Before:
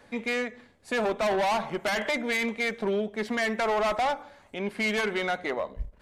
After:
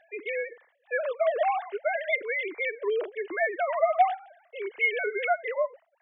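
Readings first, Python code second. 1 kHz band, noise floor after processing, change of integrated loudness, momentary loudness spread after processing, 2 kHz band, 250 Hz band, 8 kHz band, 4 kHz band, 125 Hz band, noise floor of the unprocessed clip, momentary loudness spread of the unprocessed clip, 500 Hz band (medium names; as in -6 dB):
+1.5 dB, -69 dBFS, 0.0 dB, 8 LU, 0.0 dB, -15.0 dB, under -35 dB, -10.5 dB, under -35 dB, -58 dBFS, 8 LU, +1.0 dB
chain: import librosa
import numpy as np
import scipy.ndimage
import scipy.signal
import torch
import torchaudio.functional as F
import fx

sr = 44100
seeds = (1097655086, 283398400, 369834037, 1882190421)

y = fx.sine_speech(x, sr)
y = fx.notch(y, sr, hz=1300.0, q=24.0)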